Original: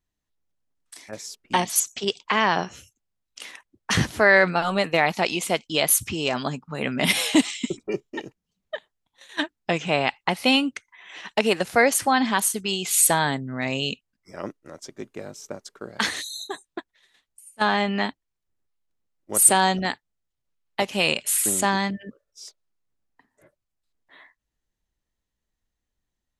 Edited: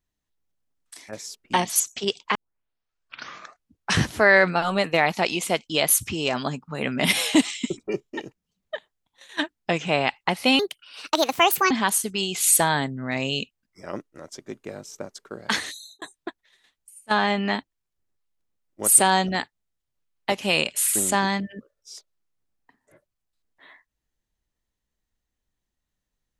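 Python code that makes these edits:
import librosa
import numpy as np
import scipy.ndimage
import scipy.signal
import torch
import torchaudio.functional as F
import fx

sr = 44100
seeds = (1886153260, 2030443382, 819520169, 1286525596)

y = fx.edit(x, sr, fx.tape_start(start_s=2.35, length_s=1.69),
    fx.speed_span(start_s=10.59, length_s=1.62, speed=1.45),
    fx.fade_out_span(start_s=16.04, length_s=0.48), tone=tone)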